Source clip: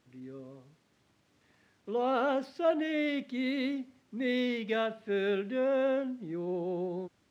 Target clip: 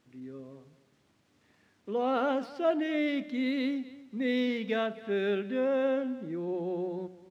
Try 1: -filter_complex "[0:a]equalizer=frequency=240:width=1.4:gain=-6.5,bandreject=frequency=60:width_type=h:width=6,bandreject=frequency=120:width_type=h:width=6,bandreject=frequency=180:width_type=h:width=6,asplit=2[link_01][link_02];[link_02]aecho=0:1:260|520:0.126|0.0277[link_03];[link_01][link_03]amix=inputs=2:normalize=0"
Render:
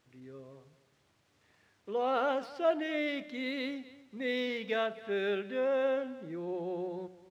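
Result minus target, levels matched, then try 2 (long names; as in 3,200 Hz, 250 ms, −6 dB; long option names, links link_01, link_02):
250 Hz band −4.5 dB
-filter_complex "[0:a]equalizer=frequency=240:width=1.4:gain=2.5,bandreject=frequency=60:width_type=h:width=6,bandreject=frequency=120:width_type=h:width=6,bandreject=frequency=180:width_type=h:width=6,asplit=2[link_01][link_02];[link_02]aecho=0:1:260|520:0.126|0.0277[link_03];[link_01][link_03]amix=inputs=2:normalize=0"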